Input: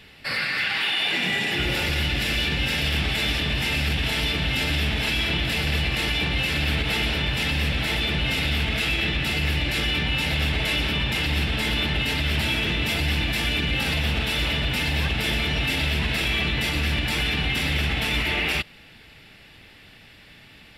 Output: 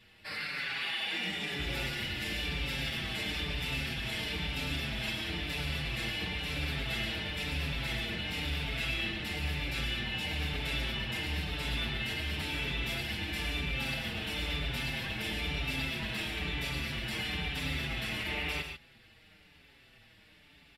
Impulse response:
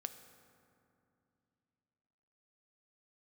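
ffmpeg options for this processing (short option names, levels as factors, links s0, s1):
-filter_complex "[0:a]asplit=2[s0][s1];[s1]aecho=0:1:105|142.9:0.316|0.355[s2];[s0][s2]amix=inputs=2:normalize=0,asplit=2[s3][s4];[s4]adelay=5.7,afreqshift=-1[s5];[s3][s5]amix=inputs=2:normalize=1,volume=0.376"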